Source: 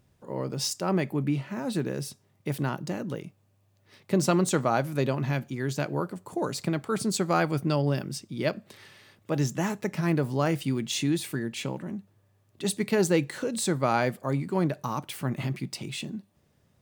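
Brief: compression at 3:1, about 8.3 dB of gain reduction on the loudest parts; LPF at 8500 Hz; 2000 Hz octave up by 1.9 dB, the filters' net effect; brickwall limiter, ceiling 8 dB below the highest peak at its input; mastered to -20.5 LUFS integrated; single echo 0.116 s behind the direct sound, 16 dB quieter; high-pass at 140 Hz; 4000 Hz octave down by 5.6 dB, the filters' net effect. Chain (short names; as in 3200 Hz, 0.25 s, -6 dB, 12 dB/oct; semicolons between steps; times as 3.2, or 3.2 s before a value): HPF 140 Hz; LPF 8500 Hz; bell 2000 Hz +4.5 dB; bell 4000 Hz -8.5 dB; compressor 3:1, threshold -30 dBFS; limiter -25 dBFS; echo 0.116 s -16 dB; gain +16 dB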